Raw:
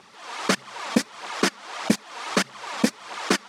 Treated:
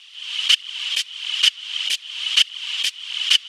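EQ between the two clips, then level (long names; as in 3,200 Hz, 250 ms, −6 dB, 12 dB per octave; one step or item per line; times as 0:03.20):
high-pass with resonance 3,000 Hz, resonance Q 12
+1.0 dB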